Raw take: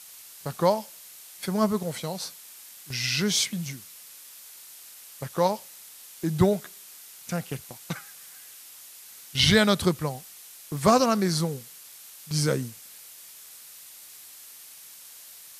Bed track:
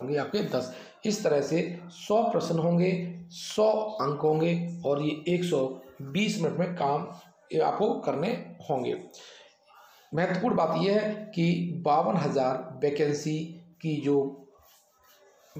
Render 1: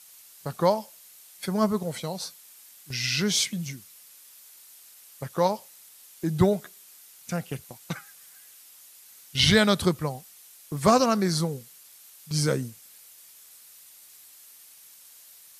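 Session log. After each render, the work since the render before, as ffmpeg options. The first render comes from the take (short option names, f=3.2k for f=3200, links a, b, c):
-af "afftdn=nr=6:nf=-47"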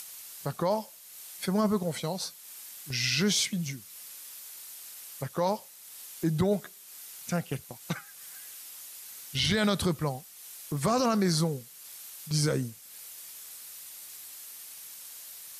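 -af "acompressor=mode=upward:threshold=-37dB:ratio=2.5,alimiter=limit=-17.5dB:level=0:latency=1:release=14"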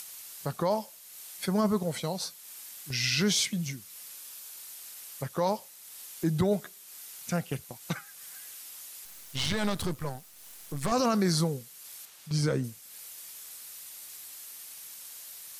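-filter_complex "[0:a]asettb=1/sr,asplit=3[a][b][c];[a]atrim=end=4.164[d];[b]atrim=start=4.16:end=4.59,asetpts=PTS-STARTPTS,afade=t=in:d=0.004:c=qsin,afade=t=out:st=0.426:d=0.004:c=qsin,bandreject=f=2k:w=12[e];[c]atrim=start=4.586[f];[d][e]acrossfade=d=0.004:c1=hsin:c2=qsin[g];[g][f]acrossfade=d=0.004:c1=qsin:c2=hsin,asettb=1/sr,asplit=3[h][i][j];[h]atrim=end=9.054[k];[i]atrim=start=9.05:end=10.92,asetpts=PTS-STARTPTS,afade=t=in:d=0.004:c=qsin,afade=t=out:st=1.866:d=0.004:c=qsin,aeval=exprs='if(lt(val(0),0),0.251*val(0),val(0))':c=same[l];[j]atrim=start=10.916[m];[k][l]acrossfade=d=0.004:c1=hsin:c2=qsin[n];[n][m]acrossfade=d=0.004:c1=qsin:c2=hsin,asettb=1/sr,asplit=3[o][p][q];[o]atrim=end=12.054[r];[p]atrim=start=12.05:end=12.64,asetpts=PTS-STARTPTS,afade=t=in:d=0.004:c=qsin,afade=t=out:st=0.586:d=0.004:c=qsin,lowpass=f=3.6k:p=1[s];[q]atrim=start=12.636[t];[r][s]acrossfade=d=0.004:c1=hsin:c2=qsin[u];[u][t]acrossfade=d=0.004:c1=qsin:c2=hsin"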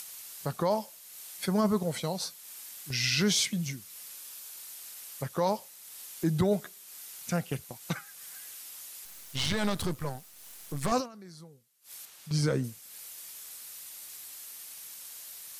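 -filter_complex "[0:a]asplit=3[a][b][c];[a]atrim=end=11.09,asetpts=PTS-STARTPTS,afade=t=out:st=10.97:d=0.12:c=qua:silence=0.0749894[d];[b]atrim=start=11.09:end=11.8,asetpts=PTS-STARTPTS,volume=-22.5dB[e];[c]atrim=start=11.8,asetpts=PTS-STARTPTS,afade=t=in:d=0.12:c=qua:silence=0.0749894[f];[d][e][f]concat=n=3:v=0:a=1"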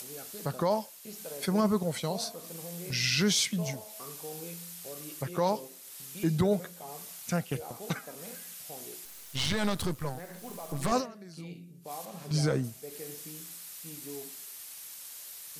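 -filter_complex "[1:a]volume=-18.5dB[a];[0:a][a]amix=inputs=2:normalize=0"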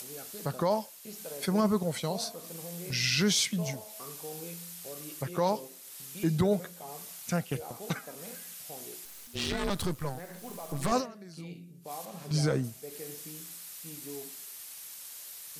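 -filter_complex "[0:a]asettb=1/sr,asplit=3[a][b][c];[a]atrim=end=9.274[d];[b]atrim=start=9.27:end=9.7,asetpts=PTS-STARTPTS,afade=t=in:d=0.004:c=qsin,afade=t=out:st=0.426:d=0.004:c=qsin,aeval=exprs='val(0)*sin(2*PI*240*n/s)':c=same[e];[c]atrim=start=9.696[f];[d][e]acrossfade=d=0.004:c1=hsin:c2=qsin[g];[g][f]acrossfade=d=0.004:c1=qsin:c2=hsin"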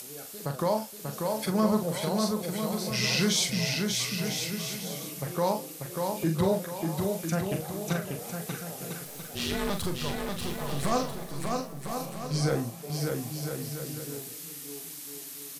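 -filter_complex "[0:a]asplit=2[a][b];[b]adelay=42,volume=-7dB[c];[a][c]amix=inputs=2:normalize=0,aecho=1:1:590|1003|1292|1494|1636:0.631|0.398|0.251|0.158|0.1"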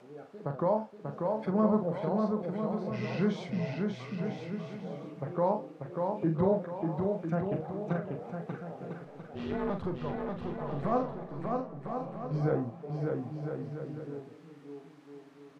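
-af "lowpass=1.1k,lowshelf=f=88:g=-10.5"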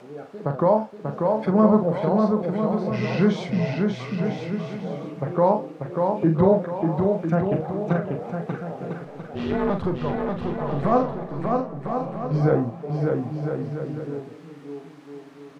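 -af "volume=9.5dB"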